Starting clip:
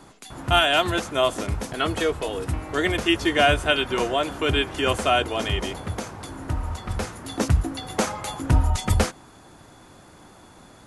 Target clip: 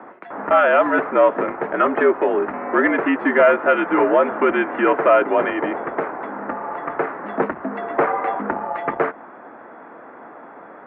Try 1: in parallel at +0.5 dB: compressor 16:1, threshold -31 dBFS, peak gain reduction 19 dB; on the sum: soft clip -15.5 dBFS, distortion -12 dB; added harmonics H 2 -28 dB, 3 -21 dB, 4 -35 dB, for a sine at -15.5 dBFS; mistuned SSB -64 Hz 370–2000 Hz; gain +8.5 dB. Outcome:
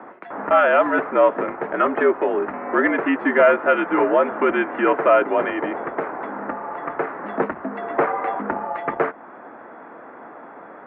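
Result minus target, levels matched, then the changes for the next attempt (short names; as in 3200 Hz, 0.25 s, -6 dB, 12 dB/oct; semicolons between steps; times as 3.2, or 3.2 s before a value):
compressor: peak gain reduction +7 dB
change: compressor 16:1, threshold -23.5 dBFS, peak gain reduction 12 dB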